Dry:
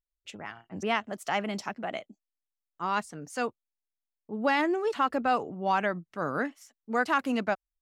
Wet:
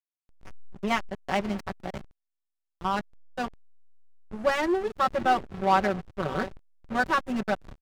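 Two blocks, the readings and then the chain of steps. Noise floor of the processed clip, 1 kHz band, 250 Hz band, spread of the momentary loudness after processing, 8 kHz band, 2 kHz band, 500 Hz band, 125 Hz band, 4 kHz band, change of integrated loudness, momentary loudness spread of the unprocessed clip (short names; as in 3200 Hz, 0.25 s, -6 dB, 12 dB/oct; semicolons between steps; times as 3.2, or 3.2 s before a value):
-84 dBFS, +2.0 dB, +1.0 dB, 12 LU, 0.0 dB, +0.5 dB, +1.5 dB, +4.5 dB, +1.0 dB, +1.5 dB, 14 LU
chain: comb 5.3 ms, depth 98%; on a send: diffused feedback echo 0.628 s, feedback 49%, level -12 dB; on the sum: backlash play -22 dBFS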